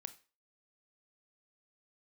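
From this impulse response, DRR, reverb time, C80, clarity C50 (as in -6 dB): 11.0 dB, 0.35 s, 20.5 dB, 16.0 dB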